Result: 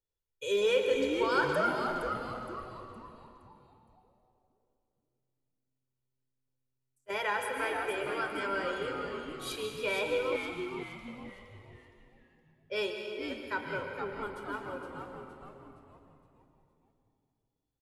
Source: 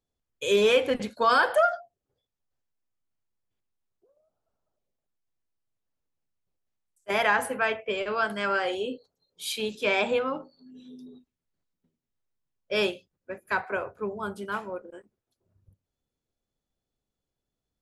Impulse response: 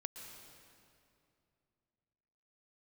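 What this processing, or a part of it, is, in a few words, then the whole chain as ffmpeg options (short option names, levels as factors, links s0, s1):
stairwell: -filter_complex "[1:a]atrim=start_sample=2205[s0];[0:a][s0]afir=irnorm=-1:irlink=0,asettb=1/sr,asplit=3[s1][s2][s3];[s1]atrim=end=10.364[s4];[s2]atrim=start=10.36:end=11.08,asetpts=PTS-STARTPTS,afade=t=in:d=0.004:c=qsin,afade=t=out:st=0.716:d=0.004:c=qsin,highpass=f=960:w=0.5412,highpass=f=960:w=1.3066[s5];[s3]atrim=start=11.076[s6];[s4][s5]acrossfade=d=0.004:c1=hsin:c2=qsin[s7];[s7][s6]acrossfade=d=0.004:c1=qsin:c2=hsin,aecho=1:1:2.1:0.64,asplit=6[s8][s9][s10][s11][s12][s13];[s9]adelay=466,afreqshift=-130,volume=0.447[s14];[s10]adelay=932,afreqshift=-260,volume=0.188[s15];[s11]adelay=1398,afreqshift=-390,volume=0.0785[s16];[s12]adelay=1864,afreqshift=-520,volume=0.0331[s17];[s13]adelay=2330,afreqshift=-650,volume=0.014[s18];[s8][s14][s15][s16][s17][s18]amix=inputs=6:normalize=0,volume=0.501"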